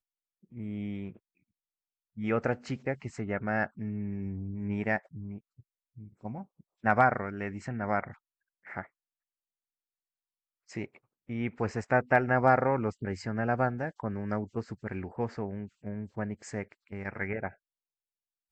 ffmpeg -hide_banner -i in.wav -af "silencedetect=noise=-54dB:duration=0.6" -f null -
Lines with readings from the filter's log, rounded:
silence_start: 1.17
silence_end: 2.17 | silence_duration: 0.99
silence_start: 8.87
silence_end: 10.69 | silence_duration: 1.82
silence_start: 17.54
silence_end: 18.51 | silence_duration: 0.97